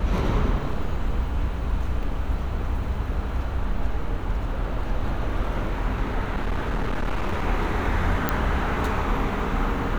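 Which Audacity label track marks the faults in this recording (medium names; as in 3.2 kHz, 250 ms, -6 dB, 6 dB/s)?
6.360000	7.470000	clipped -21 dBFS
8.290000	8.290000	pop -7 dBFS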